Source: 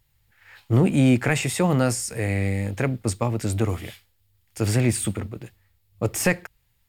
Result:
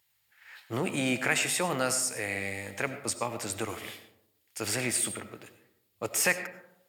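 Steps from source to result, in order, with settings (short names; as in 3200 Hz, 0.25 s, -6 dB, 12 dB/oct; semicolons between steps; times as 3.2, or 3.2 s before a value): HPF 1100 Hz 6 dB/oct; digital reverb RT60 0.84 s, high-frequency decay 0.35×, pre-delay 50 ms, DRR 10.5 dB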